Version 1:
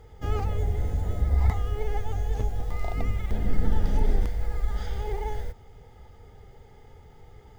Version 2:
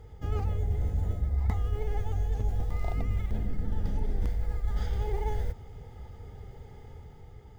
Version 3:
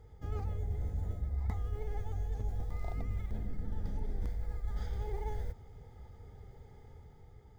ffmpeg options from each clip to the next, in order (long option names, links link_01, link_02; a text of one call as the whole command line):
ffmpeg -i in.wav -af "dynaudnorm=framelen=110:gausssize=11:maxgain=3.5dB,equalizer=frequency=96:width=0.37:gain=6.5,areverse,acompressor=threshold=-21dB:ratio=6,areverse,volume=-3.5dB" out.wav
ffmpeg -i in.wav -af "equalizer=frequency=2800:width=6.3:gain=-8.5,volume=-7dB" out.wav